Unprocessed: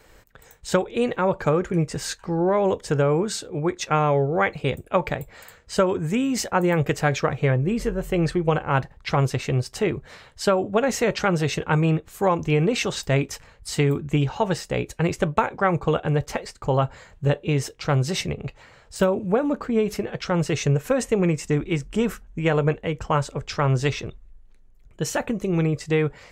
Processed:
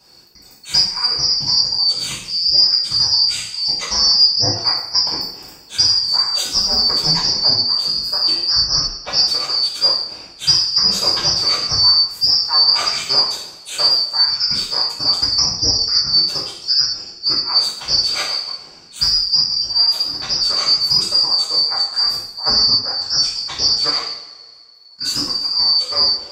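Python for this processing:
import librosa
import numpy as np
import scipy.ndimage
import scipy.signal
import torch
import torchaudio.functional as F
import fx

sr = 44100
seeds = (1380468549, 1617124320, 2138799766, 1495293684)

y = fx.band_shuffle(x, sr, order='2341')
y = fx.rev_double_slope(y, sr, seeds[0], early_s=0.63, late_s=2.0, knee_db=-18, drr_db=-7.0)
y = F.gain(torch.from_numpy(y), -2.5).numpy()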